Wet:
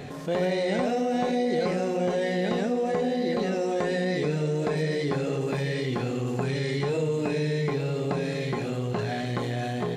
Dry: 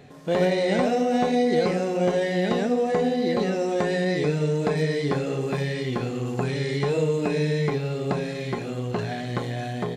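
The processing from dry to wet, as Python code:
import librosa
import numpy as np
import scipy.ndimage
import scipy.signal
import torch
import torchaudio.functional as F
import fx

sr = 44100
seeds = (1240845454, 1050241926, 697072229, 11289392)

p1 = x + fx.echo_single(x, sr, ms=861, db=-13.0, dry=0)
p2 = fx.env_flatten(p1, sr, amount_pct=50)
y = F.gain(torch.from_numpy(p2), -5.5).numpy()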